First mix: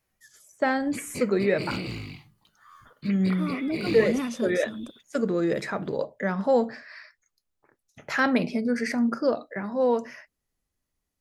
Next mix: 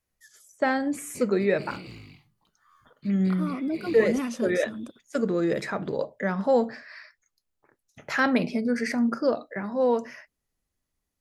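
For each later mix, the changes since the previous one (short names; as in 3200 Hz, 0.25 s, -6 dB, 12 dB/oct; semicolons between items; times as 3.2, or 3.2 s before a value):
background -9.0 dB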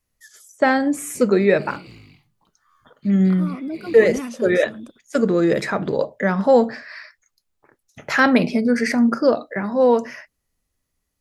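first voice +7.5 dB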